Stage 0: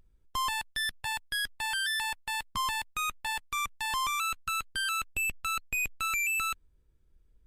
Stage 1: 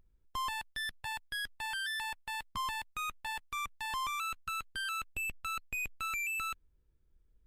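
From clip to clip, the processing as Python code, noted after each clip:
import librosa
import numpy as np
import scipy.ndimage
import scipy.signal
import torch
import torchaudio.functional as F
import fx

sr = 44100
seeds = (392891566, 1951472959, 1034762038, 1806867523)

y = fx.peak_eq(x, sr, hz=8800.0, db=-5.0, octaves=2.2)
y = F.gain(torch.from_numpy(y), -4.5).numpy()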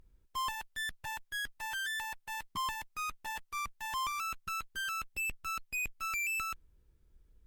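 y = fx.tube_stage(x, sr, drive_db=40.0, bias=0.35)
y = F.gain(torch.from_numpy(y), 7.0).numpy()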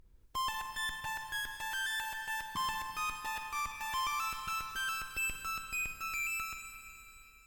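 y = fx.fade_out_tail(x, sr, length_s=2.01)
y = fx.recorder_agc(y, sr, target_db=-35.5, rise_db_per_s=19.0, max_gain_db=30)
y = fx.rev_schroeder(y, sr, rt60_s=3.5, comb_ms=38, drr_db=4.0)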